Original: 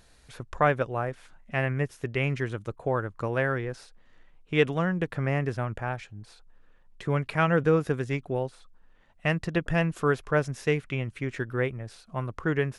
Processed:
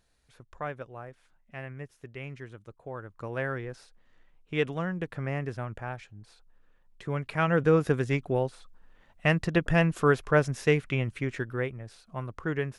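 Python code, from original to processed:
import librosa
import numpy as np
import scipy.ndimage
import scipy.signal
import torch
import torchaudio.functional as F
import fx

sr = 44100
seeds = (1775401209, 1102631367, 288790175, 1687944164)

y = fx.gain(x, sr, db=fx.line((2.87, -13.0), (3.43, -5.0), (7.15, -5.0), (7.89, 2.0), (11.12, 2.0), (11.67, -4.0)))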